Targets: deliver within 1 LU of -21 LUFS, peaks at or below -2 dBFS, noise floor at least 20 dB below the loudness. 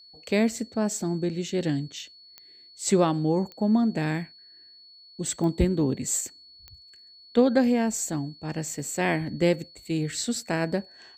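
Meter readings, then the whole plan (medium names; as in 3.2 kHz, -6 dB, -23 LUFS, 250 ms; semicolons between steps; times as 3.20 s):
clicks found 4; steady tone 4.4 kHz; tone level -49 dBFS; loudness -26.5 LUFS; peak level -8.5 dBFS; loudness target -21.0 LUFS
-> de-click; band-stop 4.4 kHz, Q 30; trim +5.5 dB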